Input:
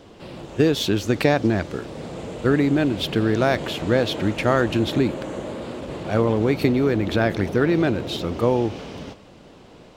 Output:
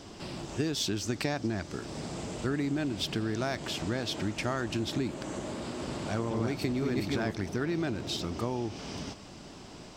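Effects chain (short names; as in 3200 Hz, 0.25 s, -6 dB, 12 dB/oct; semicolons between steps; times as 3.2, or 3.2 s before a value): 5.28–7.31 reverse delay 0.514 s, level -1 dB; thirty-one-band EQ 500 Hz -9 dB, 5000 Hz +8 dB, 8000 Hz +9 dB; compressor 2:1, threshold -37 dBFS, peak gain reduction 13 dB; bell 6000 Hz +5.5 dB 0.31 oct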